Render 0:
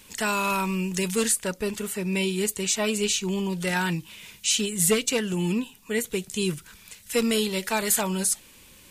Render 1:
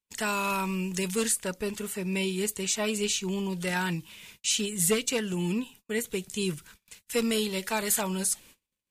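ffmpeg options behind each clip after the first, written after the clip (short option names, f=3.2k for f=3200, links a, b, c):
-af "agate=range=-39dB:threshold=-46dB:ratio=16:detection=peak,volume=-3.5dB"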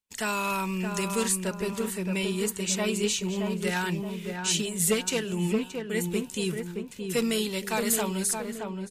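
-filter_complex "[0:a]asplit=2[a][b];[b]adelay=622,lowpass=f=1.3k:p=1,volume=-4dB,asplit=2[c][d];[d]adelay=622,lowpass=f=1.3k:p=1,volume=0.49,asplit=2[e][f];[f]adelay=622,lowpass=f=1.3k:p=1,volume=0.49,asplit=2[g][h];[h]adelay=622,lowpass=f=1.3k:p=1,volume=0.49,asplit=2[i][j];[j]adelay=622,lowpass=f=1.3k:p=1,volume=0.49,asplit=2[k][l];[l]adelay=622,lowpass=f=1.3k:p=1,volume=0.49[m];[a][c][e][g][i][k][m]amix=inputs=7:normalize=0"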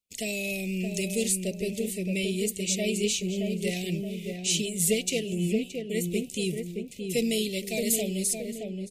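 -af "asuperstop=centerf=1200:order=12:qfactor=0.86"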